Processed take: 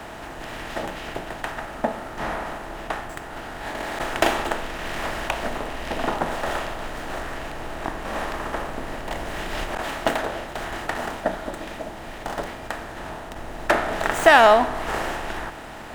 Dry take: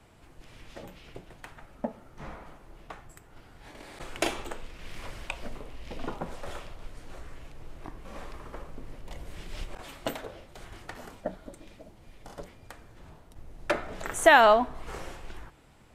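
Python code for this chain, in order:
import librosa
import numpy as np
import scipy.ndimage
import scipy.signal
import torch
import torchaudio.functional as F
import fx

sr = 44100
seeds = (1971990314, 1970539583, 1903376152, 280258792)

y = fx.bin_compress(x, sr, power=0.6)
y = fx.running_max(y, sr, window=3)
y = y * librosa.db_to_amplitude(3.0)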